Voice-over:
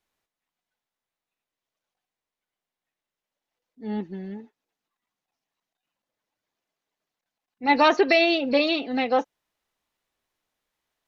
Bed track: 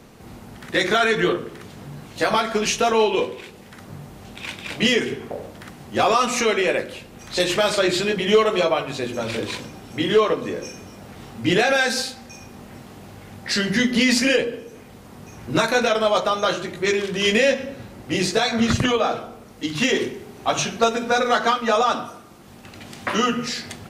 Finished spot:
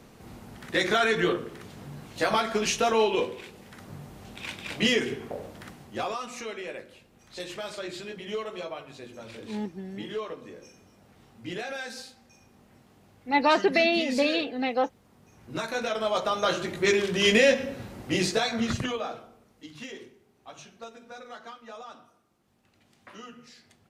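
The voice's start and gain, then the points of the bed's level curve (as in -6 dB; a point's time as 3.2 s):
5.65 s, -3.5 dB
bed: 5.69 s -5 dB
6.22 s -17 dB
15.21 s -17 dB
16.7 s -2 dB
18.01 s -2 dB
20.23 s -24.5 dB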